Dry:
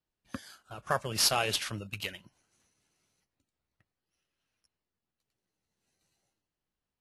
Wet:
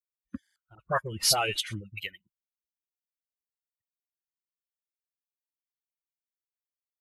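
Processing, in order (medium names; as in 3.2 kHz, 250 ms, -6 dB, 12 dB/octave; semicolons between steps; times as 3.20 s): expander on every frequency bin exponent 2; 0.75–2.00 s: phase dispersion highs, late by 49 ms, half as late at 1.3 kHz; buffer glitch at 0.42 s, samples 2048, times 2; trim +4.5 dB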